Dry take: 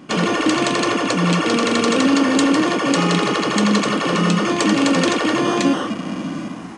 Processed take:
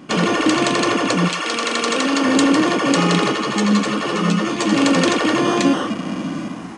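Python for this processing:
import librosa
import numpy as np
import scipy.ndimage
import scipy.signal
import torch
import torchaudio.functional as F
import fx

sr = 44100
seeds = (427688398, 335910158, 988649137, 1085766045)

y = fx.highpass(x, sr, hz=fx.line((1.27, 1500.0), (2.23, 380.0)), slope=6, at=(1.27, 2.23), fade=0.02)
y = fx.ensemble(y, sr, at=(3.31, 4.71), fade=0.02)
y = y * 10.0 ** (1.0 / 20.0)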